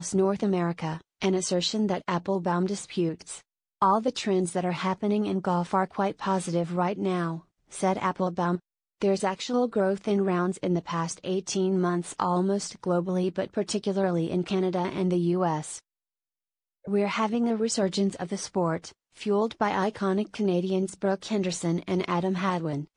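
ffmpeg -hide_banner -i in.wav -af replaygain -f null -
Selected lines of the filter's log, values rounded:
track_gain = +8.5 dB
track_peak = 0.196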